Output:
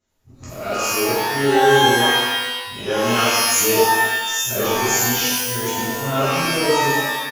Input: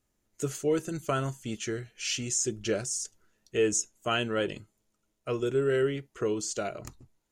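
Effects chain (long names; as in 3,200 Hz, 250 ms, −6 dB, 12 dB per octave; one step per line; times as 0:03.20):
played backwards from end to start
downsampling to 16,000 Hz
reverb with rising layers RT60 1.1 s, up +12 semitones, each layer −2 dB, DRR −10.5 dB
level −1.5 dB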